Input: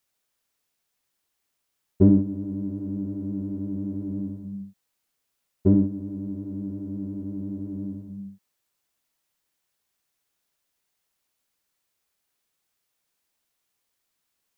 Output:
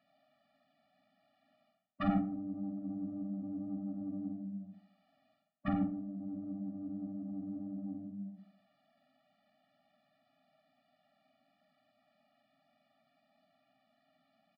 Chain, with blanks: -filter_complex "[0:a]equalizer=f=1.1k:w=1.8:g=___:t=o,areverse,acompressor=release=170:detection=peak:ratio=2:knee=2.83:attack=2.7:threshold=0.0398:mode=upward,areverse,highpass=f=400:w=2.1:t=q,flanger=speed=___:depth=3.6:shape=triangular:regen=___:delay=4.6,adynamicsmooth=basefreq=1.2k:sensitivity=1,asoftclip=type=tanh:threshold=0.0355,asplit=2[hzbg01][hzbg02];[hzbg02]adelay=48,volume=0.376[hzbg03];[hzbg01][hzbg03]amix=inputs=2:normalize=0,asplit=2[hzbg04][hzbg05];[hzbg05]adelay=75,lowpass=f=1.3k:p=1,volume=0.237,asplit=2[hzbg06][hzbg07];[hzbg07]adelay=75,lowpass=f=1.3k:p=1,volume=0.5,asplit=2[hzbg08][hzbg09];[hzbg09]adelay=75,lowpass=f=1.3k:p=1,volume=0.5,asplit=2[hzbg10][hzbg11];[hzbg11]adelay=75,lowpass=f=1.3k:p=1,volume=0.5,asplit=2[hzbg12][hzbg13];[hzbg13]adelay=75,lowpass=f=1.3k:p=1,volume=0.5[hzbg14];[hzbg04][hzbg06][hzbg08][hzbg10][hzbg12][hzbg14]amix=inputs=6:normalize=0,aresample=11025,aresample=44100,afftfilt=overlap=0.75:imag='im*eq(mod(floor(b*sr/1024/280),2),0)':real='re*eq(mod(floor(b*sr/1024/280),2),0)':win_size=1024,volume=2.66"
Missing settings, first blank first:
-11, 1.8, -56